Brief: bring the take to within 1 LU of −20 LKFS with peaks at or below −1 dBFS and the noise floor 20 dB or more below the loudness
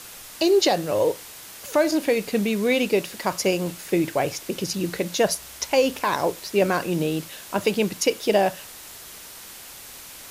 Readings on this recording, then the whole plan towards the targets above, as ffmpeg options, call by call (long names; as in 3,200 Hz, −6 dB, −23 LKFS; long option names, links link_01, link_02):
background noise floor −42 dBFS; target noise floor −44 dBFS; integrated loudness −23.5 LKFS; sample peak −8.5 dBFS; target loudness −20.0 LKFS
→ -af "afftdn=noise_reduction=6:noise_floor=-42"
-af "volume=3.5dB"